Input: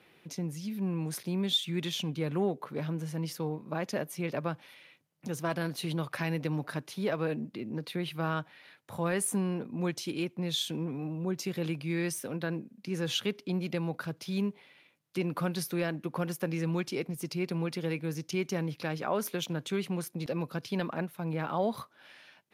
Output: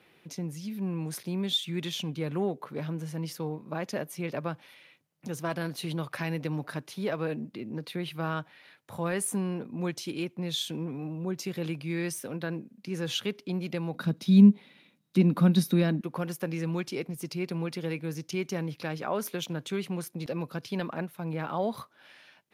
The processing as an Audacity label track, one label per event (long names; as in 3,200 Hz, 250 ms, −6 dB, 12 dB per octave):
13.950000	16.010000	hollow resonant body resonances 210/3,800 Hz, height 17 dB